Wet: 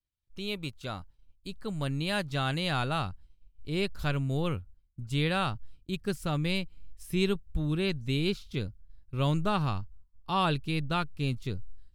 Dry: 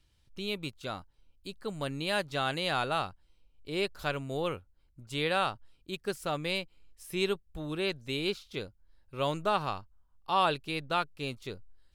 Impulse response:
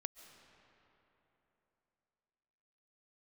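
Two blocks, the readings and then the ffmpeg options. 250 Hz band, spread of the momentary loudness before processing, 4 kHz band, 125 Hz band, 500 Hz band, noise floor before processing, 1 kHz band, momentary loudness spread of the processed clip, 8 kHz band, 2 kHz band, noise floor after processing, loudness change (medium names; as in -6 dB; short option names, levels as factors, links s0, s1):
+6.0 dB, 16 LU, 0.0 dB, +10.5 dB, -1.0 dB, -68 dBFS, -2.0 dB, 14 LU, 0.0 dB, -0.5 dB, -66 dBFS, +1.5 dB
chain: -af "agate=range=0.0224:threshold=0.00224:ratio=3:detection=peak,asubboost=boost=5:cutoff=230"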